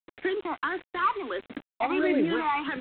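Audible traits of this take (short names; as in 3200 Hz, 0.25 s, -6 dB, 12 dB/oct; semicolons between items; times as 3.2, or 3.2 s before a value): phasing stages 12, 1.5 Hz, lowest notch 520–1100 Hz; a quantiser's noise floor 8-bit, dither none; G.726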